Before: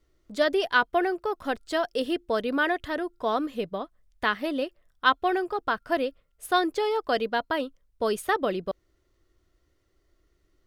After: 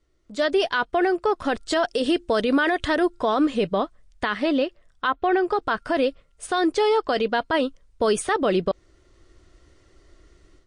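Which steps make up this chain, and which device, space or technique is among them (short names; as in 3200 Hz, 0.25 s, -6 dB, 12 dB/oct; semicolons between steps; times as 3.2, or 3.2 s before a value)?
1.88–3.06 high shelf 5700 Hz +5.5 dB; 4.38–5.48 treble ducked by the level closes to 2000 Hz, closed at -18 dBFS; low-bitrate web radio (AGC gain up to 15 dB; limiter -12.5 dBFS, peak gain reduction 11.5 dB; MP3 48 kbps 22050 Hz)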